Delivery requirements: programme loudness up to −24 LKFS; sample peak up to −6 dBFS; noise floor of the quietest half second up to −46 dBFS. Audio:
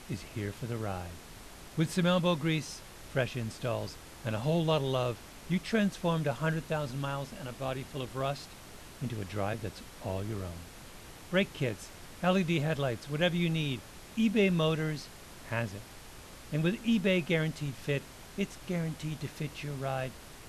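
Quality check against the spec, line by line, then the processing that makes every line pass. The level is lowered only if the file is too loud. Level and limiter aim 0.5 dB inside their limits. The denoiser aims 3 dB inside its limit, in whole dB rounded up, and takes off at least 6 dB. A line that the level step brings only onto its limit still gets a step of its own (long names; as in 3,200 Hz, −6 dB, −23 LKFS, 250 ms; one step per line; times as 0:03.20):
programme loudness −33.0 LKFS: in spec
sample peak −14.5 dBFS: in spec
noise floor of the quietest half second −49 dBFS: in spec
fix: no processing needed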